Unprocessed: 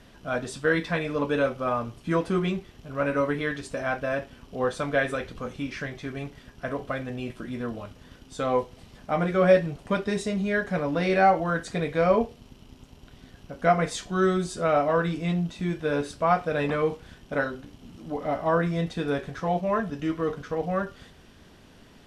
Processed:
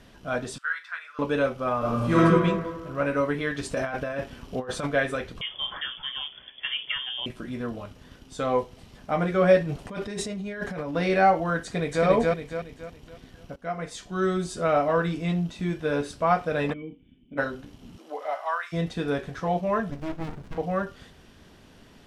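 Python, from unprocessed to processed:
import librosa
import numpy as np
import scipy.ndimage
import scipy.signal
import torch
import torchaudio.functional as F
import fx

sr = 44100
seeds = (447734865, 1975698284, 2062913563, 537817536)

y = fx.ladder_highpass(x, sr, hz=1300.0, resonance_pct=75, at=(0.58, 1.19))
y = fx.reverb_throw(y, sr, start_s=1.78, length_s=0.42, rt60_s=1.6, drr_db=-9.0)
y = fx.over_compress(y, sr, threshold_db=-30.0, ratio=-0.5, at=(3.57, 4.86), fade=0.02)
y = fx.freq_invert(y, sr, carrier_hz=3400, at=(5.41, 7.26))
y = fx.over_compress(y, sr, threshold_db=-32.0, ratio=-1.0, at=(9.59, 10.96))
y = fx.echo_throw(y, sr, start_s=11.63, length_s=0.42, ms=280, feedback_pct=40, wet_db=-0.5)
y = fx.formant_cascade(y, sr, vowel='i', at=(16.72, 17.37), fade=0.02)
y = fx.highpass(y, sr, hz=fx.line((17.97, 320.0), (18.72, 1200.0)), slope=24, at=(17.97, 18.72), fade=0.02)
y = fx.running_max(y, sr, window=65, at=(19.91, 20.58))
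y = fx.edit(y, sr, fx.fade_in_from(start_s=13.56, length_s=0.99, floor_db=-16.0), tone=tone)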